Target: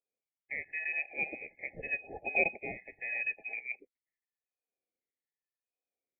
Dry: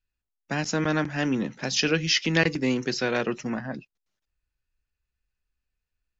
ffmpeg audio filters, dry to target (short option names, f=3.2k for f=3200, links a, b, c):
-af "afftfilt=real='re*pow(10,17/40*sin(2*PI*(0.52*log(max(b,1)*sr/1024/100)/log(2)-(0.86)*(pts-256)/sr)))':imag='im*pow(10,17/40*sin(2*PI*(0.52*log(max(b,1)*sr/1024/100)/log(2)-(0.86)*(pts-256)/sr)))':win_size=1024:overlap=0.75,lowpass=f=2.6k:t=q:w=0.5098,lowpass=f=2.6k:t=q:w=0.6013,lowpass=f=2.6k:t=q:w=0.9,lowpass=f=2.6k:t=q:w=2.563,afreqshift=-3000,afftfilt=real='re*eq(mod(floor(b*sr/1024/860),2),0)':imag='im*eq(mod(floor(b*sr/1024/860),2),0)':win_size=1024:overlap=0.75,volume=-7dB"